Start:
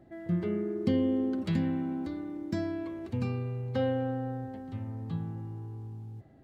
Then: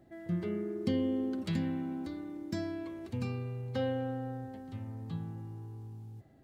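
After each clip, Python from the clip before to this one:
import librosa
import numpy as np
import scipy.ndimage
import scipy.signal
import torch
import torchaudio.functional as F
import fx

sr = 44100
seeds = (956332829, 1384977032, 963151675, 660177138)

y = fx.high_shelf(x, sr, hz=3600.0, db=8.5)
y = F.gain(torch.from_numpy(y), -4.0).numpy()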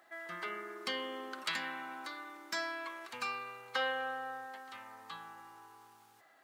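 y = fx.highpass_res(x, sr, hz=1200.0, q=2.1)
y = fx.end_taper(y, sr, db_per_s=170.0)
y = F.gain(torch.from_numpy(y), 8.0).numpy()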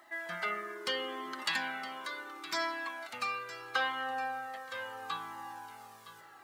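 y = fx.rider(x, sr, range_db=5, speed_s=2.0)
y = y + 10.0 ** (-14.0 / 20.0) * np.pad(y, (int(964 * sr / 1000.0), 0))[:len(y)]
y = fx.comb_cascade(y, sr, direction='falling', hz=0.75)
y = F.gain(torch.from_numpy(y), 7.0).numpy()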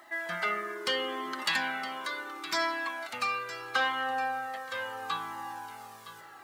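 y = 10.0 ** (-23.0 / 20.0) * np.tanh(x / 10.0 ** (-23.0 / 20.0))
y = F.gain(torch.from_numpy(y), 5.0).numpy()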